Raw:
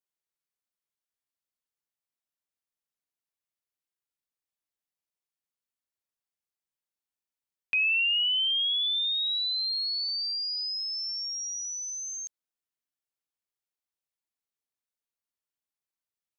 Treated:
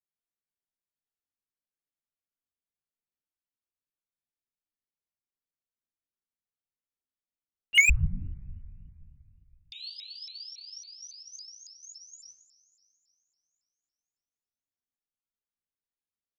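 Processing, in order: gate -25 dBFS, range -27 dB; tilt -2.5 dB/oct; hard clip -33 dBFS, distortion -15 dB; doubler 19 ms -2 dB; two-slope reverb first 0.52 s, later 3.1 s, from -18 dB, DRR -8.5 dB; 7.89–9.73 inverted band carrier 2600 Hz; shaped vibrato saw up 3.6 Hz, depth 250 cents; gain +8.5 dB

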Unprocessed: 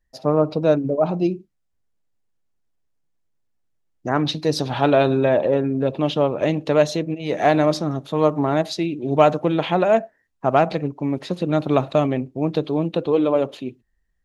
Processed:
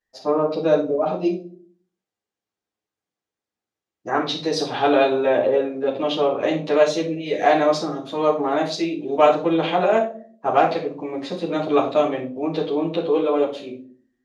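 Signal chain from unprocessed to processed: HPF 460 Hz 6 dB/oct; spectral gain 7.09–7.41, 660–1600 Hz -9 dB; LPF 7300 Hz 12 dB/oct; reverb RT60 0.45 s, pre-delay 10 ms, DRR -6.5 dB; gain -5.5 dB

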